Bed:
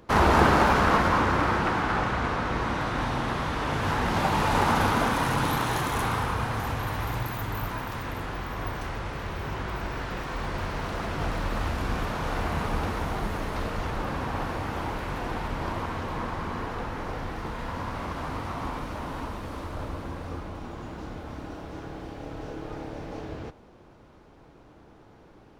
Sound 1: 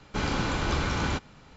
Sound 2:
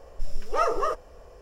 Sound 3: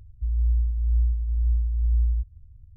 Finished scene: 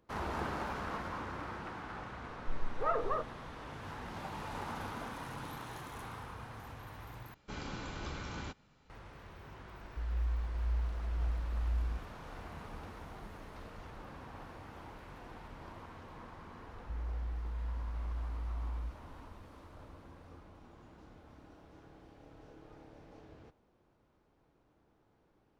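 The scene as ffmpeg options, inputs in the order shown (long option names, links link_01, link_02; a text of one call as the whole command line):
ffmpeg -i bed.wav -i cue0.wav -i cue1.wav -i cue2.wav -filter_complex "[3:a]asplit=2[link_01][link_02];[0:a]volume=-18.5dB[link_03];[2:a]lowpass=frequency=2100:width=0.5412,lowpass=frequency=2100:width=1.3066[link_04];[link_02]acompressor=threshold=-30dB:ratio=6:attack=3.2:release=140:knee=1:detection=peak[link_05];[link_03]asplit=2[link_06][link_07];[link_06]atrim=end=7.344[link_08];[1:a]atrim=end=1.56,asetpts=PTS-STARTPTS,volume=-14.5dB[link_09];[link_07]atrim=start=8.896[link_10];[link_04]atrim=end=1.41,asetpts=PTS-STARTPTS,volume=-8.5dB,afade=type=in:duration=0.004:curve=hsin,afade=type=out:start_time=1.406:duration=0.004:curve=hsin,adelay=2280[link_11];[link_01]atrim=end=2.76,asetpts=PTS-STARTPTS,volume=-12dB,afade=type=in:duration=0.004:curve=hsin,afade=type=out:start_time=2.756:duration=0.004:curve=hsin,adelay=9750[link_12];[link_05]atrim=end=2.76,asetpts=PTS-STARTPTS,volume=-6.5dB,afade=type=in:duration=0.004:curve=hsin,afade=type=out:start_time=2.756:duration=0.004:curve=hsin,adelay=735588S[link_13];[link_08][link_09]acrossfade=duration=0.004:curve1=hsin:curve2=hsin[link_14];[link_14][link_10]acrossfade=duration=0.004:curve1=hsin:curve2=hsin[link_15];[link_15][link_11][link_12][link_13]amix=inputs=4:normalize=0" out.wav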